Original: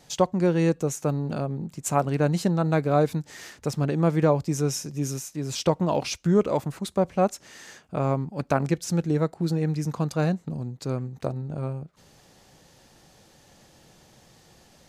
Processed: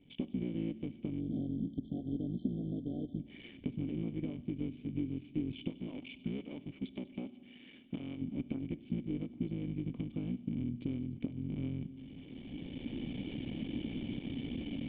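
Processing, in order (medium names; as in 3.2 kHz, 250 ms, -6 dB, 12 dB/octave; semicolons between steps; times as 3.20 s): cycle switcher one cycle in 3, muted; recorder AGC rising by 15 dB/s; 1.20–3.20 s: spectral selection erased 780–3100 Hz; 5.70–8.21 s: bass shelf 460 Hz -9 dB; compression, threshold -30 dBFS, peak gain reduction 13.5 dB; cascade formant filter i; feedback echo behind a high-pass 98 ms, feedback 62%, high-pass 3.5 kHz, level -11.5 dB; reverberation RT60 2.0 s, pre-delay 4 ms, DRR 16.5 dB; trim +5 dB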